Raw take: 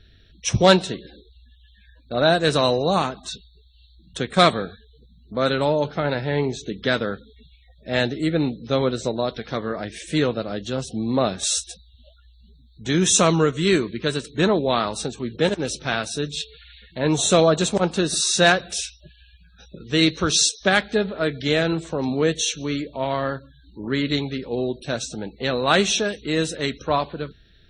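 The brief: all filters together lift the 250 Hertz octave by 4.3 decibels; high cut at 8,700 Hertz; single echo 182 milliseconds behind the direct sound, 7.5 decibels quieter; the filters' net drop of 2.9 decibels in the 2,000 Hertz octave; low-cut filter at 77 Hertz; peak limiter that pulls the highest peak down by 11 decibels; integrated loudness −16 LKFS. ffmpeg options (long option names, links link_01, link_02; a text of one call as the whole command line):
ffmpeg -i in.wav -af "highpass=77,lowpass=8700,equalizer=frequency=250:width_type=o:gain=6,equalizer=frequency=2000:width_type=o:gain=-4,alimiter=limit=-11.5dB:level=0:latency=1,aecho=1:1:182:0.422,volume=6.5dB" out.wav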